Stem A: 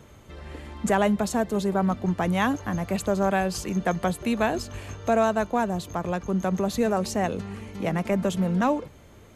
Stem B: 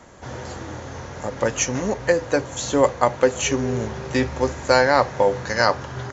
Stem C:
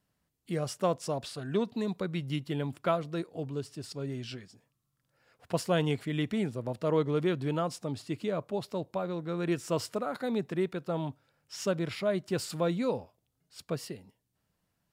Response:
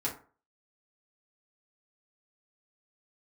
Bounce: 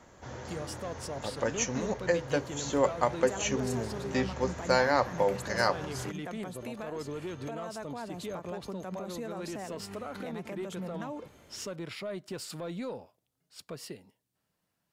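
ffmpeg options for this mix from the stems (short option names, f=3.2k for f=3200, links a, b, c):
-filter_complex "[0:a]acompressor=threshold=-27dB:ratio=3,adelay=2400,volume=-3.5dB[a];[1:a]volume=-9dB[b];[2:a]aeval=exprs='(tanh(8.91*val(0)+0.2)-tanh(0.2))/8.91':c=same,volume=0dB[c];[a][c]amix=inputs=2:normalize=0,lowshelf=f=110:g=-12,alimiter=level_in=6dB:limit=-24dB:level=0:latency=1:release=117,volume=-6dB,volume=0dB[d];[b][d]amix=inputs=2:normalize=0"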